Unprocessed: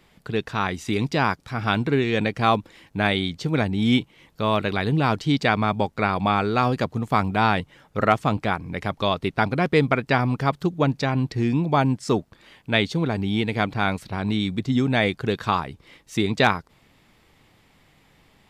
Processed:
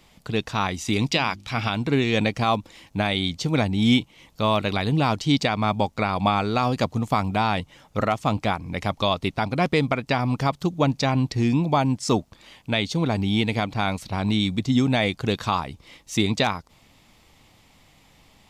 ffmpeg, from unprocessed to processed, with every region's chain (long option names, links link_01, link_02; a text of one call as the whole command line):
ffmpeg -i in.wav -filter_complex "[0:a]asettb=1/sr,asplit=3[link_01][link_02][link_03];[link_01]atrim=end=1.114[link_04];[link_02]atrim=start=1.11:end=1.7,asetpts=PTS-STARTPTS,afade=type=in:duration=0.004:curve=qsin,afade=type=out:start_time=0.586:duration=0.004:curve=qsin,equalizer=frequency=2800:width_type=o:width=1.2:gain=9.5,bandreject=frequency=50:width_type=h:width=6,bandreject=frequency=100:width_type=h:width=6,bandreject=frequency=150:width_type=h:width=6,bandreject=frequency=200:width_type=h:width=6,bandreject=frequency=250:width_type=h:width=6,bandreject=frequency=300:width_type=h:width=6,bandreject=frequency=350:width_type=h:width=6[link_05];[link_03]atrim=start=1.696[link_06];[link_04][link_05]acrossfade=duration=0.004:curve1=hsin:curve2=qsin[link_07];[link_07][link_06]acrossfade=duration=0.004:curve1=qsin:curve2=hsin,equalizer=frequency=150:width=1.3:gain=-3.5,alimiter=limit=-10.5dB:level=0:latency=1:release=238,equalizer=frequency=400:width_type=o:width=0.67:gain=-6,equalizer=frequency=1600:width_type=o:width=0.67:gain=-7,equalizer=frequency=6300:width_type=o:width=0.67:gain=4,volume=4dB" out.wav